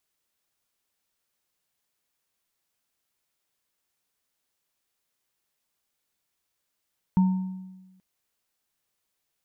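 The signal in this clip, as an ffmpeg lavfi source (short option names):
-f lavfi -i "aevalsrc='0.178*pow(10,-3*t/1.19)*sin(2*PI*187*t)+0.0316*pow(10,-3*t/0.75)*sin(2*PI*915*t)':d=0.83:s=44100"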